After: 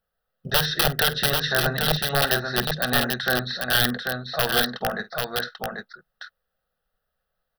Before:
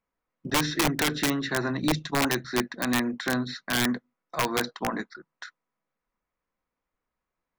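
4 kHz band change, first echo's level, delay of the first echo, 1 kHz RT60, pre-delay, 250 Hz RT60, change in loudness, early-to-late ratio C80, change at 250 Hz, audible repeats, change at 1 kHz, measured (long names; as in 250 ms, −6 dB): +8.5 dB, −16.5 dB, 49 ms, no reverb audible, no reverb audible, no reverb audible, +4.5 dB, no reverb audible, −4.0 dB, 2, +3.5 dB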